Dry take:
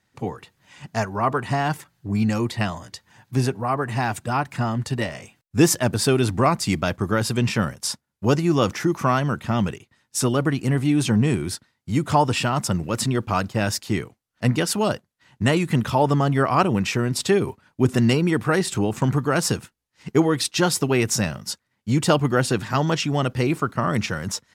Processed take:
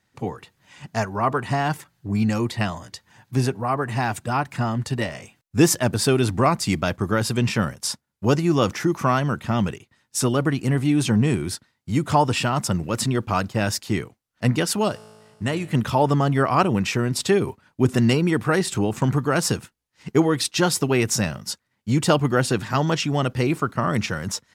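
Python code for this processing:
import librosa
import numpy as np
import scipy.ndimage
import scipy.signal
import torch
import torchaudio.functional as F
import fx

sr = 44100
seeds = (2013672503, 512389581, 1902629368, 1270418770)

y = fx.comb_fb(x, sr, f0_hz=54.0, decay_s=1.9, harmonics='all', damping=0.0, mix_pct=50, at=(14.88, 15.73), fade=0.02)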